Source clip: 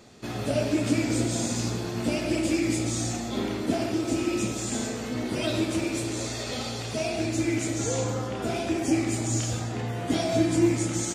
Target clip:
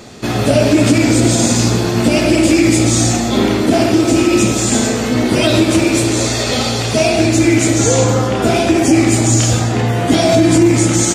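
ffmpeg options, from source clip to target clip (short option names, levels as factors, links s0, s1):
-af "alimiter=level_in=7.08:limit=0.891:release=50:level=0:latency=1,volume=0.891"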